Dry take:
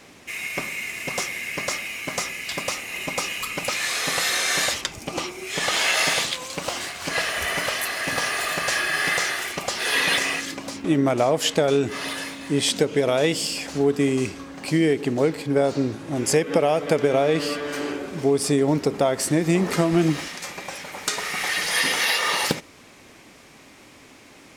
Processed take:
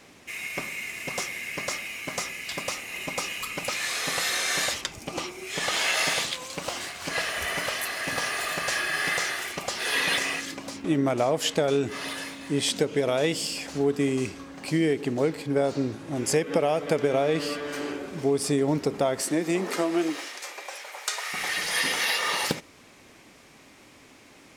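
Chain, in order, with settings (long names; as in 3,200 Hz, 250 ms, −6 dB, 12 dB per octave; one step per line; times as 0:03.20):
0:19.21–0:21.32: high-pass filter 180 Hz → 600 Hz 24 dB per octave
level −4 dB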